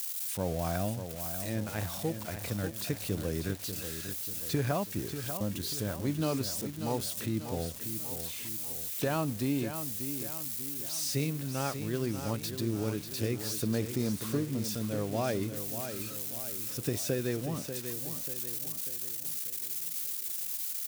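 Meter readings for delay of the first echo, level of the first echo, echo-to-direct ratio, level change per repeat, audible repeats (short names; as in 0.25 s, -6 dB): 0.59 s, -9.0 dB, -8.0 dB, -6.0 dB, 5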